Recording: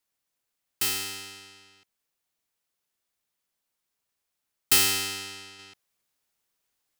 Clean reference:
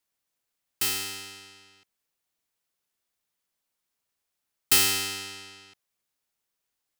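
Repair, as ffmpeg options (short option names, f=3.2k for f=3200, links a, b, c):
-af "asetnsamples=n=441:p=0,asendcmd='5.59 volume volume -3.5dB',volume=0dB"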